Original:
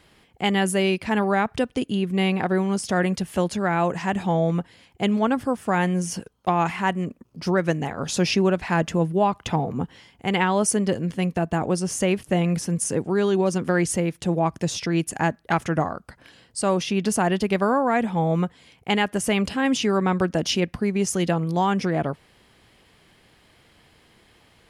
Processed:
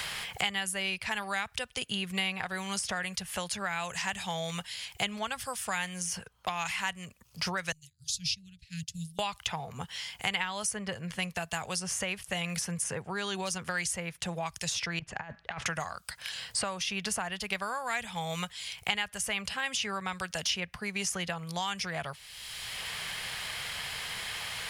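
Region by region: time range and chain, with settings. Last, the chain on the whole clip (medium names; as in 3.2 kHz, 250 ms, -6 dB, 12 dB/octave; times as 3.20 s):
7.72–9.19 s: Chebyshev band-stop 130–4100 Hz, order 3 + upward expansion 2.5:1, over -43 dBFS
14.99–15.66 s: compressor with a negative ratio -27 dBFS, ratio -0.5 + tape spacing loss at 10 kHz 38 dB
whole clip: amplifier tone stack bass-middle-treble 10-0-10; three bands compressed up and down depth 100%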